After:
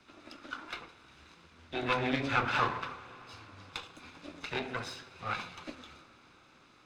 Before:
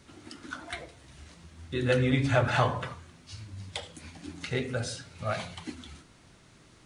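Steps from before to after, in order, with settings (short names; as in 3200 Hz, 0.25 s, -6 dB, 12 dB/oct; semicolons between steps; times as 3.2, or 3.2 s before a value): minimum comb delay 0.79 ms; three-band isolator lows -14 dB, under 260 Hz, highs -18 dB, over 5200 Hz; reverb RT60 5.5 s, pre-delay 73 ms, DRR 17 dB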